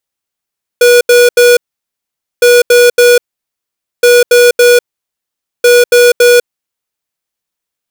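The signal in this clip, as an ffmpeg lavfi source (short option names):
-f lavfi -i "aevalsrc='0.596*(2*lt(mod(485*t,1),0.5)-1)*clip(min(mod(mod(t,1.61),0.28),0.2-mod(mod(t,1.61),0.28))/0.005,0,1)*lt(mod(t,1.61),0.84)':d=6.44:s=44100"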